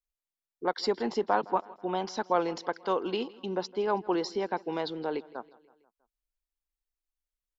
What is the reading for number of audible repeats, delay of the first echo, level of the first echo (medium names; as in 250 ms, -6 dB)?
3, 162 ms, -21.5 dB